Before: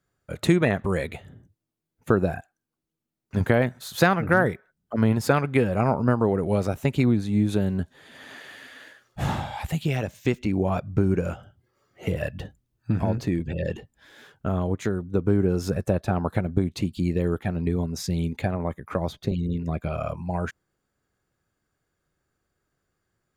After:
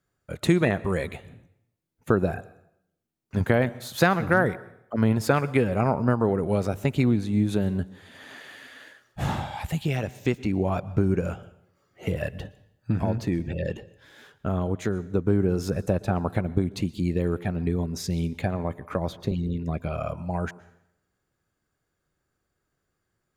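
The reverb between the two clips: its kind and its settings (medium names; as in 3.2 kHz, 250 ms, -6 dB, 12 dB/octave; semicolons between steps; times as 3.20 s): plate-style reverb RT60 0.75 s, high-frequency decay 0.9×, pre-delay 105 ms, DRR 19.5 dB; trim -1 dB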